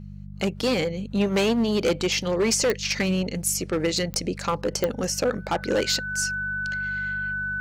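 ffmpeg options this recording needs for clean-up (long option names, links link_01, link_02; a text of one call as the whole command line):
ffmpeg -i in.wav -af "adeclick=threshold=4,bandreject=frequency=49.2:width_type=h:width=4,bandreject=frequency=98.4:width_type=h:width=4,bandreject=frequency=147.6:width_type=h:width=4,bandreject=frequency=196.8:width_type=h:width=4,bandreject=frequency=1500:width=30" out.wav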